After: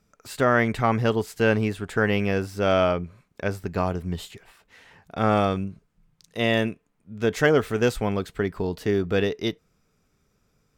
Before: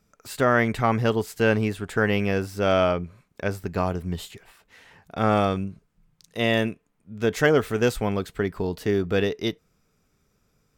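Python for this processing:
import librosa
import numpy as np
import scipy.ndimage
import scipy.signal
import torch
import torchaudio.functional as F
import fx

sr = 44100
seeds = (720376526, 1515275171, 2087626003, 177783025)

y = fx.high_shelf(x, sr, hz=11000.0, db=-5.0)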